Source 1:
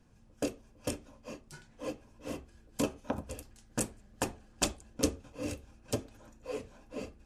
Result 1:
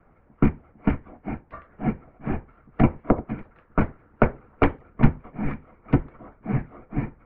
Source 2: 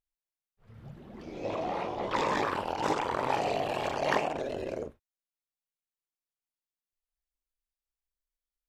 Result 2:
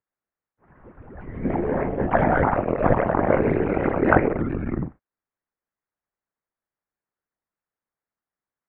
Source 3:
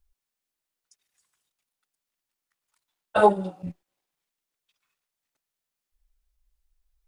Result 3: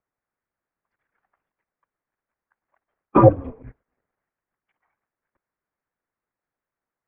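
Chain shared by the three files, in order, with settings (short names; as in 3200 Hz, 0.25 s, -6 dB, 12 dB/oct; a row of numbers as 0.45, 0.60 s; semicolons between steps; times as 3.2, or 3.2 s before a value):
harmonic-percussive split percussive +8 dB; mistuned SSB -300 Hz 290–2200 Hz; normalise peaks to -1.5 dBFS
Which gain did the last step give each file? +10.0, +5.5, +2.5 dB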